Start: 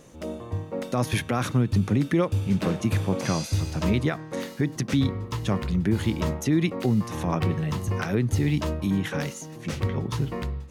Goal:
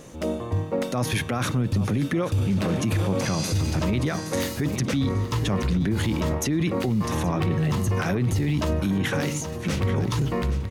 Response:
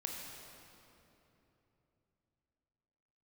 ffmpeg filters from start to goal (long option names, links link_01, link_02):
-filter_complex "[0:a]aecho=1:1:821|1642|2463|3284:0.178|0.0747|0.0314|0.0132,alimiter=limit=-23dB:level=0:latency=1:release=16,asettb=1/sr,asplit=3[link_01][link_02][link_03];[link_01]atrim=end=4.064[link_04];[link_02]atrim=start=4.06:end=4.76,asetpts=PTS-STARTPTS,afade=type=in:duration=0.004:curve=qsin,afade=type=out:start_time=0.696:duration=0.004:curve=qsin,highshelf=frequency=5600:gain=9[link_05];[link_03]atrim=start=4.756[link_06];[link_04][link_05]acrossfade=duration=0.004:curve1=hsin:curve2=qsin[link_07];[link_07][link_06]acrossfade=duration=0.004:curve1=qsin:curve2=hsin,volume=6.5dB"